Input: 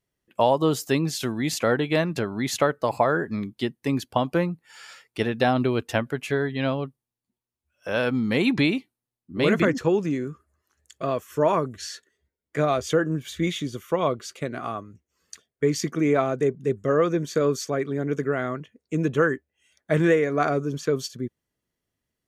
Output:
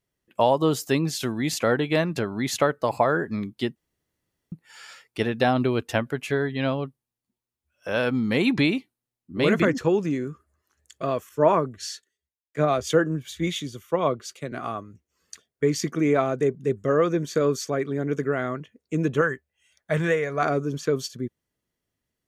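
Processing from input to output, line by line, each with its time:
3.76–4.52 room tone
11.29–14.52 three-band expander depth 70%
19.21–20.43 bell 300 Hz -10.5 dB 0.88 oct

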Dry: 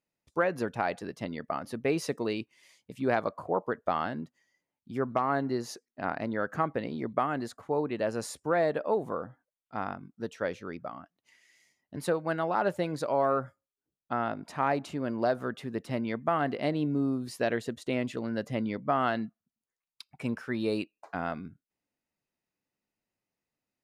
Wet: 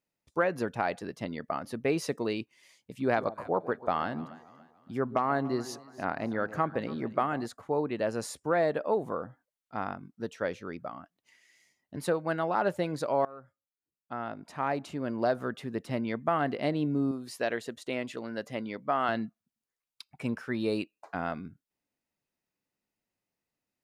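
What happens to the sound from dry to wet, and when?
3.03–7.46 echo with dull and thin repeats by turns 0.143 s, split 890 Hz, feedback 61%, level -14 dB
13.25–15.29 fade in, from -22.5 dB
17.11–19.09 low shelf 230 Hz -12 dB

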